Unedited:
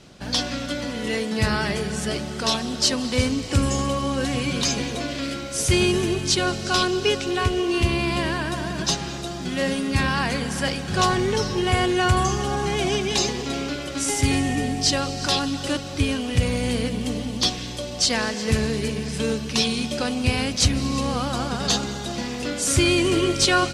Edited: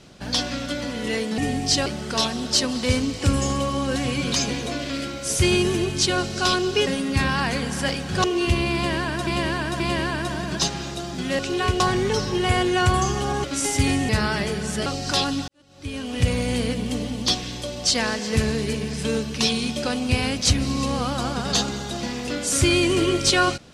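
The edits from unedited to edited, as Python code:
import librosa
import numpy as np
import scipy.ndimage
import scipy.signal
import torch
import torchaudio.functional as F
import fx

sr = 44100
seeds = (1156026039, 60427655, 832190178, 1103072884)

y = fx.edit(x, sr, fx.swap(start_s=1.38, length_s=0.77, other_s=14.53, other_length_s=0.48),
    fx.swap(start_s=7.16, length_s=0.41, other_s=9.66, other_length_s=1.37),
    fx.repeat(start_s=8.07, length_s=0.53, count=3),
    fx.cut(start_s=12.67, length_s=1.21),
    fx.fade_in_span(start_s=15.63, length_s=0.72, curve='qua'), tone=tone)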